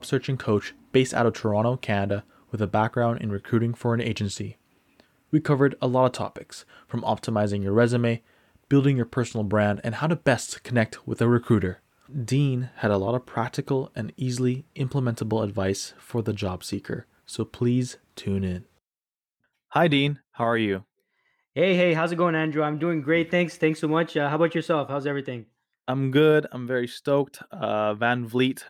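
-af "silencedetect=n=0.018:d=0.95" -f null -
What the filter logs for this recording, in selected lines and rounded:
silence_start: 18.60
silence_end: 19.72 | silence_duration: 1.13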